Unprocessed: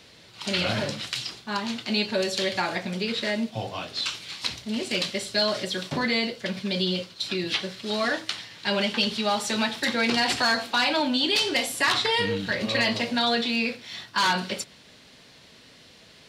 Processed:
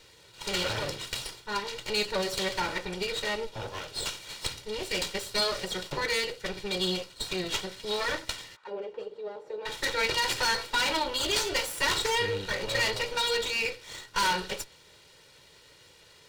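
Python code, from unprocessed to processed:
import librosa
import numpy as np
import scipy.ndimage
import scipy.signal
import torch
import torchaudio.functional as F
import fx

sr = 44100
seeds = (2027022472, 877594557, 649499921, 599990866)

y = fx.lower_of_two(x, sr, delay_ms=2.1)
y = fx.auto_wah(y, sr, base_hz=460.0, top_hz=1600.0, q=3.4, full_db=-26.5, direction='down', at=(8.55, 9.65), fade=0.02)
y = F.gain(torch.from_numpy(y), -2.5).numpy()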